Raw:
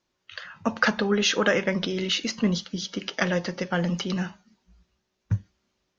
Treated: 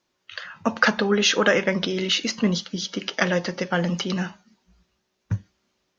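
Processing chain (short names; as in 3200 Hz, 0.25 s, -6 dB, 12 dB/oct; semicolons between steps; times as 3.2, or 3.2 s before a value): low shelf 100 Hz -9 dB; gain +3.5 dB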